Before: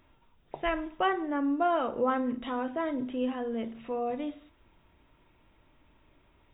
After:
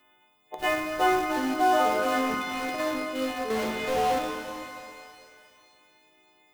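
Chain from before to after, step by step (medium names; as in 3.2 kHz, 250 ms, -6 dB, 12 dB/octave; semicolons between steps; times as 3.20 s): partials quantised in pitch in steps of 3 st; high-pass 280 Hz 12 dB/octave; 0.58–1.23 s: added noise pink -49 dBFS; 1.77–2.80 s: transient shaper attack -10 dB, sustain +8 dB; 3.50–4.19 s: overdrive pedal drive 39 dB, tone 1.4 kHz, clips at -24 dBFS; in parallel at -8 dB: bit crusher 5-bit; on the sum: pitch-shifted reverb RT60 2.3 s, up +12 st, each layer -8 dB, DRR 4 dB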